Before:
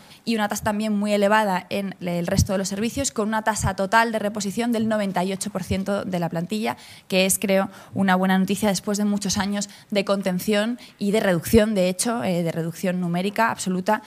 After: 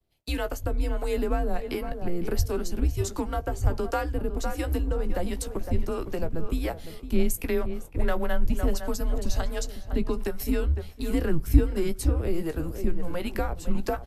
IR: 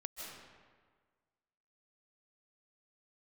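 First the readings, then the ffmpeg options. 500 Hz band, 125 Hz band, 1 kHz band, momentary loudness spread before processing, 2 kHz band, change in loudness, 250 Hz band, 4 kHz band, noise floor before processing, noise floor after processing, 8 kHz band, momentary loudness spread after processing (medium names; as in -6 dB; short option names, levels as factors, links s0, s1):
-7.0 dB, -3.0 dB, -12.0 dB, 8 LU, -13.0 dB, -7.0 dB, -8.0 dB, -12.5 dB, -47 dBFS, -40 dBFS, -11.5 dB, 5 LU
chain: -filter_complex "[0:a]acrossover=split=140|1800[s0][s1][s2];[s1]adynamicsmooth=sensitivity=6.5:basefreq=1200[s3];[s0][s3][s2]amix=inputs=3:normalize=0,acrossover=split=510[s4][s5];[s4]aeval=exprs='val(0)*(1-0.7/2+0.7/2*cos(2*PI*1.4*n/s))':c=same[s6];[s5]aeval=exprs='val(0)*(1-0.7/2-0.7/2*cos(2*PI*1.4*n/s))':c=same[s7];[s6][s7]amix=inputs=2:normalize=0,equalizer=f=12000:w=7.1:g=13.5,bandreject=f=50:t=h:w=6,bandreject=f=100:t=h:w=6,bandreject=f=150:t=h:w=6,bandreject=f=200:t=h:w=6,bandreject=f=250:t=h:w=6,asplit=2[s8][s9];[s9]adelay=16,volume=0.282[s10];[s8][s10]amix=inputs=2:normalize=0,asplit=2[s11][s12];[s12]adelay=507,lowpass=f=1600:p=1,volume=0.282,asplit=2[s13][s14];[s14]adelay=507,lowpass=f=1600:p=1,volume=0.31,asplit=2[s15][s16];[s16]adelay=507,lowpass=f=1600:p=1,volume=0.31[s17];[s13][s15][s17]amix=inputs=3:normalize=0[s18];[s11][s18]amix=inputs=2:normalize=0,agate=range=0.0224:threshold=0.0126:ratio=3:detection=peak,tiltshelf=f=1500:g=4,acrossover=split=360[s19][s20];[s20]acompressor=threshold=0.0251:ratio=2.5[s21];[s19][s21]amix=inputs=2:normalize=0,afreqshift=-170"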